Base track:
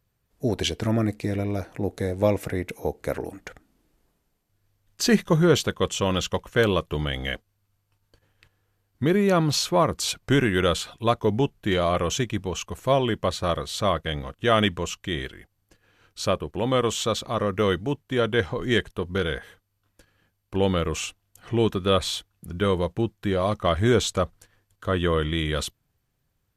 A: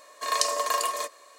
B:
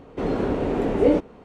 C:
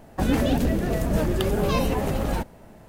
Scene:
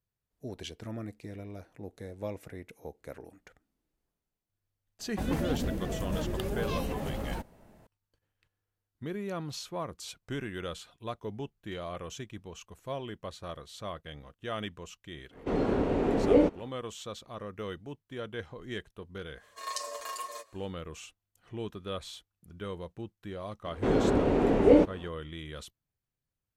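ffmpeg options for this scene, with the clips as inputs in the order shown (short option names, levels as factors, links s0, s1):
-filter_complex "[2:a]asplit=2[s0][s1];[0:a]volume=0.158[s2];[1:a]asplit=2[s3][s4];[s4]adelay=7.9,afreqshift=-2.2[s5];[s3][s5]amix=inputs=2:normalize=1[s6];[3:a]atrim=end=2.88,asetpts=PTS-STARTPTS,volume=0.316,afade=t=in:d=0.004:c=hsin,afade=t=out:st=2.876:d=0.004:c=hsin,adelay=4990[s7];[s0]atrim=end=1.44,asetpts=PTS-STARTPTS,volume=0.631,afade=t=in:d=0.1,afade=t=out:st=1.34:d=0.1,adelay=15290[s8];[s6]atrim=end=1.38,asetpts=PTS-STARTPTS,volume=0.355,afade=t=in:d=0.1,afade=t=out:st=1.28:d=0.1,adelay=19350[s9];[s1]atrim=end=1.44,asetpts=PTS-STARTPTS,volume=0.841,afade=t=in:d=0.004:c=hsin,afade=t=out:st=1.436:d=0.004:c=hsin,adelay=23650[s10];[s2][s7][s8][s9][s10]amix=inputs=5:normalize=0"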